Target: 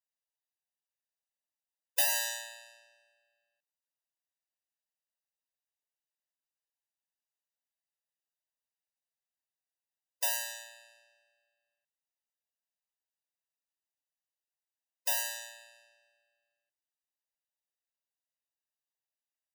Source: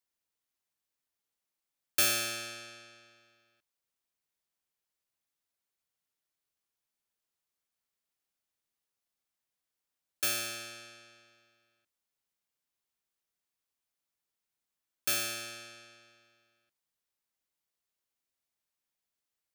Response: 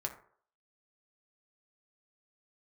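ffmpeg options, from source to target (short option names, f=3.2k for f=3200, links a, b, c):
-af "aeval=exprs='0.188*(cos(1*acos(clip(val(0)/0.188,-1,1)))-cos(1*PI/2))+0.0596*(cos(3*acos(clip(val(0)/0.188,-1,1)))-cos(3*PI/2))+0.0075*(cos(5*acos(clip(val(0)/0.188,-1,1)))-cos(5*PI/2))+0.0376*(cos(8*acos(clip(val(0)/0.188,-1,1)))-cos(8*PI/2))':c=same,afftfilt=real='re*eq(mod(floor(b*sr/1024/510),2),1)':imag='im*eq(mod(floor(b*sr/1024/510),2),1)':win_size=1024:overlap=0.75,volume=5.5dB"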